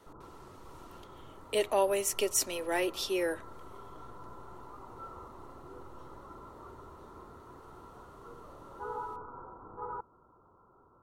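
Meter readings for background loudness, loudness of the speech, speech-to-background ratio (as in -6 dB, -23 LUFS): -48.0 LUFS, -31.0 LUFS, 17.0 dB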